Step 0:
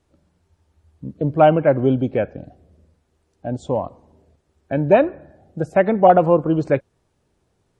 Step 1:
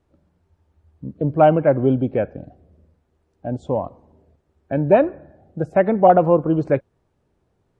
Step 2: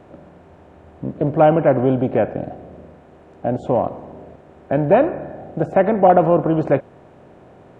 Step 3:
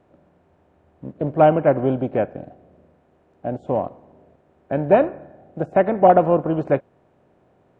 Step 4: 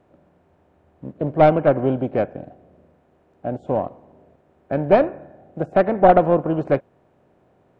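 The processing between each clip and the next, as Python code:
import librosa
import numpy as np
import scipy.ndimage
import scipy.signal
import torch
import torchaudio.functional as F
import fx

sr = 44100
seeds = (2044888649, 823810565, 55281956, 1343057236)

y1 = fx.high_shelf(x, sr, hz=3000.0, db=-11.5)
y2 = fx.bin_compress(y1, sr, power=0.6)
y2 = y2 * 10.0 ** (-1.5 / 20.0)
y3 = fx.upward_expand(y2, sr, threshold_db=-35.0, expansion=1.5)
y4 = fx.tracing_dist(y3, sr, depth_ms=0.084)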